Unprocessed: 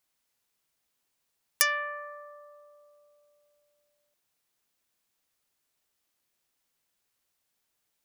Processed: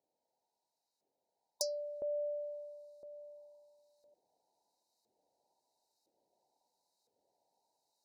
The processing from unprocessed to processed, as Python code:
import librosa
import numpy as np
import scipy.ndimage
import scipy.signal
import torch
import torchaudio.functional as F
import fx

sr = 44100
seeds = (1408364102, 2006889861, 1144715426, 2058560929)

y = fx.brickwall_bandstop(x, sr, low_hz=990.0, high_hz=3700.0)
y = fx.filter_lfo_bandpass(y, sr, shape='saw_up', hz=0.99, low_hz=450.0, high_hz=1800.0, q=1.4)
y = fx.rider(y, sr, range_db=10, speed_s=0.5)
y = F.gain(torch.from_numpy(y), 11.0).numpy()